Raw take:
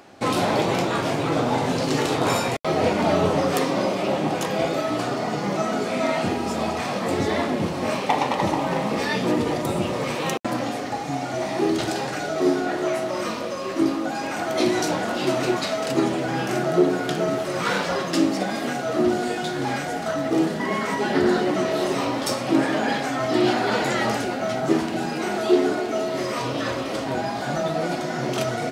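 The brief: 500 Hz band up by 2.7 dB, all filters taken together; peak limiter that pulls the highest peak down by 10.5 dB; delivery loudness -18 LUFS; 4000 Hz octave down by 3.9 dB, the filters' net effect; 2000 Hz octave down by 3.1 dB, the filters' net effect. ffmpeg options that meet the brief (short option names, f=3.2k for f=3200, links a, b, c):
-af "equalizer=f=500:t=o:g=4,equalizer=f=2k:t=o:g=-3.5,equalizer=f=4k:t=o:g=-4,volume=6dB,alimiter=limit=-8.5dB:level=0:latency=1"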